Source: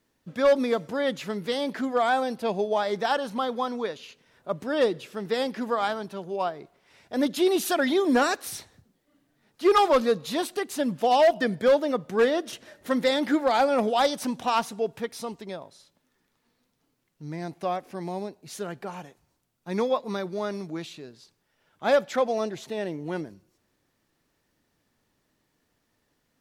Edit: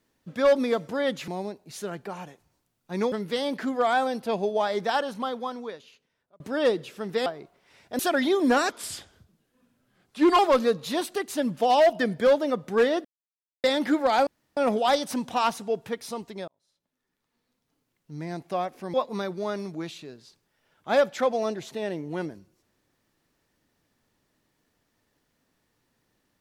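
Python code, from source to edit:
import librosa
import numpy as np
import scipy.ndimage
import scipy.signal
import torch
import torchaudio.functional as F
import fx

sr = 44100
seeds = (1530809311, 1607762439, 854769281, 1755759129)

y = fx.edit(x, sr, fx.fade_out_span(start_s=3.06, length_s=1.5),
    fx.cut(start_s=5.42, length_s=1.04),
    fx.cut(start_s=7.19, length_s=0.45),
    fx.speed_span(start_s=8.34, length_s=1.46, speed=0.86),
    fx.silence(start_s=12.46, length_s=0.59),
    fx.insert_room_tone(at_s=13.68, length_s=0.3),
    fx.fade_in_span(start_s=15.59, length_s=1.77),
    fx.move(start_s=18.05, length_s=1.84, to_s=1.28), tone=tone)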